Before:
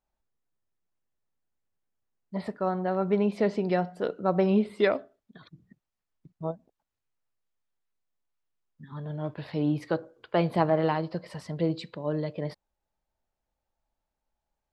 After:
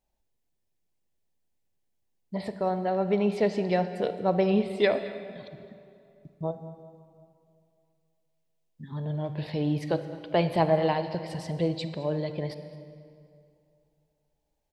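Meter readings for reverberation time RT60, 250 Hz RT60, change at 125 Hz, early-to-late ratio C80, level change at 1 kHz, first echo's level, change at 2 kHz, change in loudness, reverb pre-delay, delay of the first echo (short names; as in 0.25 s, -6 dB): 2.6 s, 2.7 s, +1.0 dB, 11.0 dB, +1.0 dB, -18.5 dB, +0.5 dB, +0.5 dB, 35 ms, 0.214 s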